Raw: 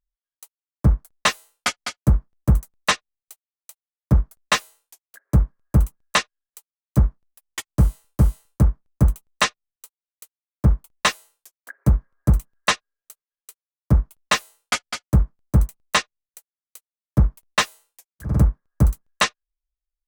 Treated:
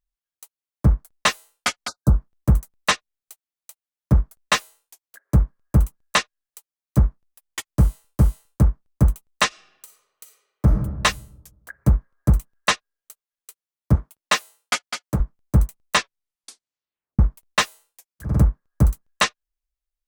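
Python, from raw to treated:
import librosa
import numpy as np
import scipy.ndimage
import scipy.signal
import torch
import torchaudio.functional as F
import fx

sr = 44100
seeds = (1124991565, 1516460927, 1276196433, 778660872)

y = fx.spec_erase(x, sr, start_s=1.88, length_s=0.29, low_hz=1600.0, high_hz=3600.0)
y = fx.reverb_throw(y, sr, start_s=9.47, length_s=1.26, rt60_s=1.2, drr_db=3.0)
y = fx.highpass(y, sr, hz=210.0, slope=6, at=(13.95, 15.2))
y = fx.edit(y, sr, fx.tape_stop(start_s=15.95, length_s=1.24), tone=tone)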